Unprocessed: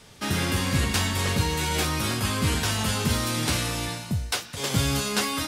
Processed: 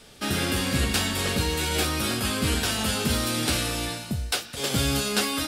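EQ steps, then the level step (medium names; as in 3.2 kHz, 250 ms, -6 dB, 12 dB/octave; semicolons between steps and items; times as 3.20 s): graphic EQ with 31 bands 100 Hz -11 dB, 160 Hz -7 dB, 1 kHz -8 dB, 2 kHz -4 dB, 6.3 kHz -4 dB; +2.0 dB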